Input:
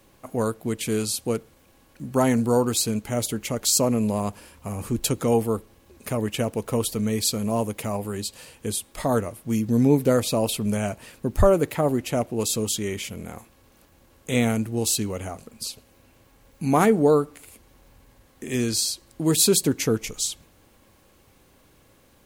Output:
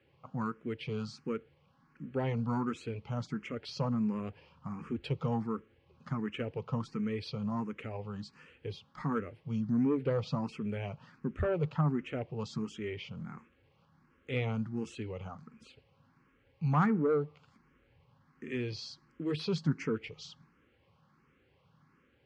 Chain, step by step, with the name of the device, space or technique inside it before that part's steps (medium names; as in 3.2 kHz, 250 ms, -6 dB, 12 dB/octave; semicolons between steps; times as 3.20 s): barber-pole phaser into a guitar amplifier (barber-pole phaser +1.4 Hz; saturation -13.5 dBFS, distortion -19 dB; cabinet simulation 82–4000 Hz, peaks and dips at 150 Hz +10 dB, 320 Hz -4 dB, 650 Hz -10 dB, 1.3 kHz +5 dB, 3.8 kHz -9 dB); trim -6.5 dB